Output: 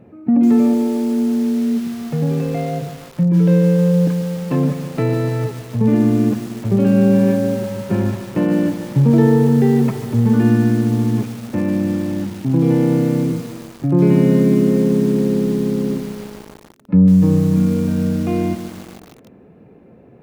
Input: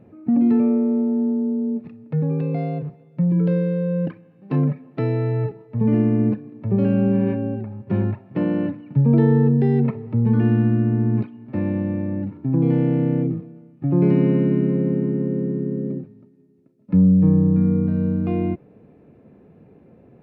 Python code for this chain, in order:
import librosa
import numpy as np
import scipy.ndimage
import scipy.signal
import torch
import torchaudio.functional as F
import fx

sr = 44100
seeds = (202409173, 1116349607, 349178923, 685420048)

p1 = fx.low_shelf(x, sr, hz=490.0, db=-2.5)
p2 = fx.hum_notches(p1, sr, base_hz=50, count=3)
p3 = p2 + fx.echo_feedback(p2, sr, ms=133, feedback_pct=44, wet_db=-16, dry=0)
p4 = fx.echo_crushed(p3, sr, ms=149, feedback_pct=80, bits=6, wet_db=-11)
y = p4 * 10.0 ** (6.0 / 20.0)